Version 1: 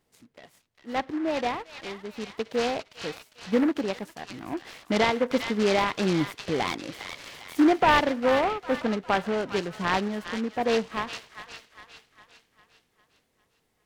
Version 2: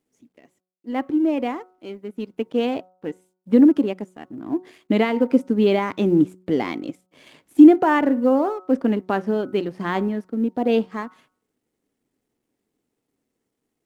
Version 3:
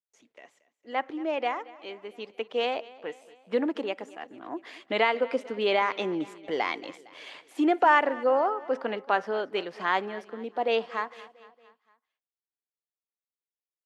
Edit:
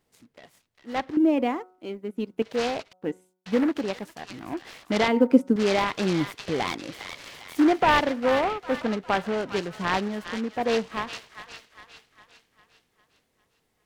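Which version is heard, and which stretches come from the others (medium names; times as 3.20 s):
1
1.17–2.42 s: from 2
2.93–3.46 s: from 2
5.08–5.56 s: from 2
not used: 3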